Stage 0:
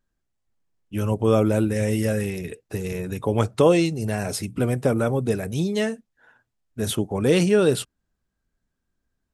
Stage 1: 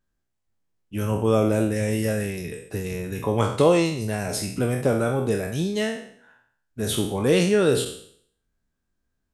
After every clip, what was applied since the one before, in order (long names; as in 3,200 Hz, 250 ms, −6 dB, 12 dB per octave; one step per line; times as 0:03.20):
peak hold with a decay on every bin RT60 0.60 s
level −2 dB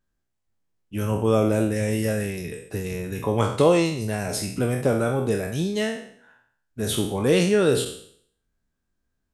no processing that can be heard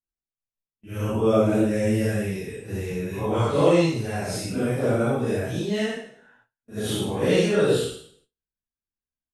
random phases in long frames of 200 ms
noise gate with hold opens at −48 dBFS
high-shelf EQ 7,400 Hz −7.5 dB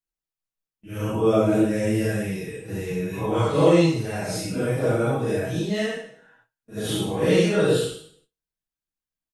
comb filter 6.3 ms, depth 45%